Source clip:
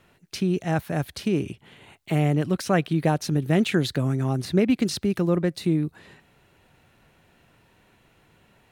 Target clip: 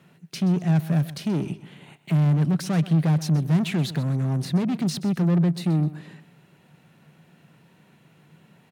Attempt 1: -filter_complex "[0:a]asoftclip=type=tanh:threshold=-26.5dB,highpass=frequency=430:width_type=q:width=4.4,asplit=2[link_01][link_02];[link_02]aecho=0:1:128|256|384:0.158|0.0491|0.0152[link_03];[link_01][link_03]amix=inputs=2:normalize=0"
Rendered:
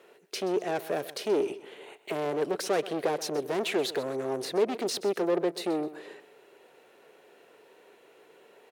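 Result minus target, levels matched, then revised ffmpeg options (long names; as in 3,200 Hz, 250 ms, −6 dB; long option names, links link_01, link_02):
125 Hz band −20.0 dB
-filter_complex "[0:a]asoftclip=type=tanh:threshold=-26.5dB,highpass=frequency=160:width_type=q:width=4.4,asplit=2[link_01][link_02];[link_02]aecho=0:1:128|256|384:0.158|0.0491|0.0152[link_03];[link_01][link_03]amix=inputs=2:normalize=0"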